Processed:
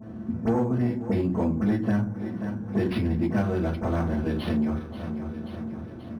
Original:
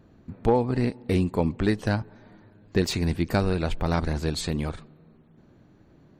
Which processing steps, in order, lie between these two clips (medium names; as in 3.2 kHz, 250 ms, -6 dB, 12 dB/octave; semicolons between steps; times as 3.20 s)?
reverberation RT60 0.35 s, pre-delay 5 ms, DRR -4.5 dB; saturation -7.5 dBFS, distortion -16 dB; feedback delay 534 ms, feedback 49%, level -18 dB; compression 2.5:1, threshold -35 dBFS, peak gain reduction 15.5 dB; high-pass 86 Hz; phase dispersion highs, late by 43 ms, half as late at 2 kHz; decimation joined by straight lines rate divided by 6×; trim +6 dB